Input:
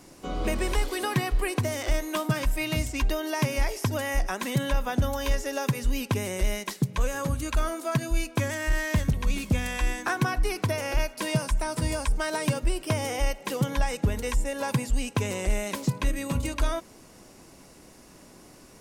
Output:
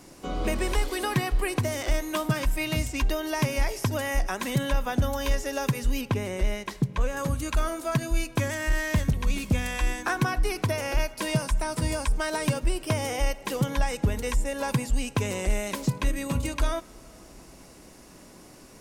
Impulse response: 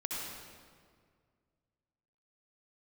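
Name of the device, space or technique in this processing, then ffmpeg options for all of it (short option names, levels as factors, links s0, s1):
ducked reverb: -filter_complex "[0:a]asettb=1/sr,asplit=3[s0][s1][s2];[s0]atrim=end=6.014[s3];[s1]atrim=start=6.01:end=7.17,asetpts=PTS-STARTPTS,afade=t=in:d=0.004:c=qsin,afade=t=out:st=1.156:d=0.004:c=qsin,highshelf=f=4900:g=-11.5[s4];[s2]atrim=start=7.166[s5];[s3][s4]acrossfade=d=0.004:c1=hsin:c2=qsin[s6];[s6][s5]acrossfade=d=0.004:c1=qsin:c2=hsin,asplit=3[s7][s8][s9];[1:a]atrim=start_sample=2205[s10];[s8][s10]afir=irnorm=-1:irlink=0[s11];[s9]apad=whole_len=829298[s12];[s11][s12]sidechaincompress=threshold=0.0224:ratio=8:attack=16:release=846,volume=0.2[s13];[s7][s13]amix=inputs=2:normalize=0"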